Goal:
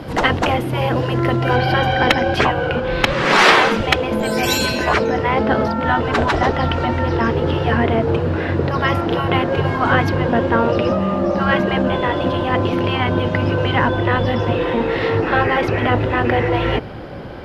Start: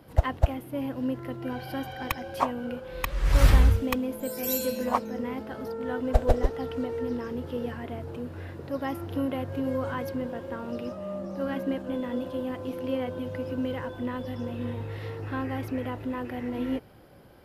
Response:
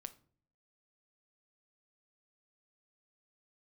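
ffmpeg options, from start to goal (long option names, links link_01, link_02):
-af "asetnsamples=nb_out_samples=441:pad=0,asendcmd='1.56 lowpass f 3900',lowpass=6400,afftfilt=real='re*lt(hypot(re,im),0.126)':imag='im*lt(hypot(re,im),0.126)':win_size=1024:overlap=0.75,apsyclip=23.5dB,volume=-1.5dB"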